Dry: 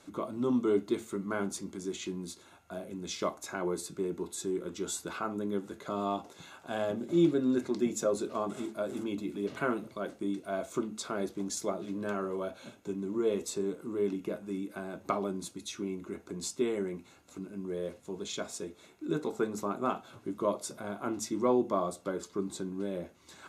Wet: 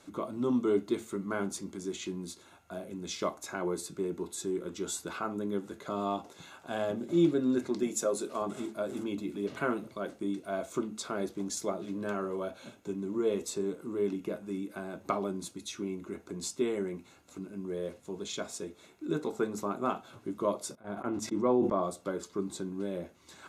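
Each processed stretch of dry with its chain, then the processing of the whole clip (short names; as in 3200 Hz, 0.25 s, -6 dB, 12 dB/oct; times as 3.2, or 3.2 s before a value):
7.83–8.42 HPF 250 Hz 6 dB/oct + bell 10000 Hz +7 dB 0.97 oct
20.75–21.83 gate -39 dBFS, range -15 dB + high shelf 3000 Hz -9.5 dB + sustainer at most 44 dB/s
whole clip: dry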